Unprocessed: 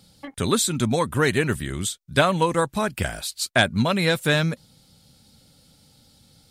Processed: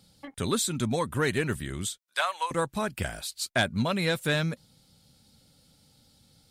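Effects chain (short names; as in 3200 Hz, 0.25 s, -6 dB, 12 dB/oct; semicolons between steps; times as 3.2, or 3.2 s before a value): 1.98–2.51 HPF 740 Hz 24 dB/oct; soft clip -7.5 dBFS, distortion -24 dB; gain -5.5 dB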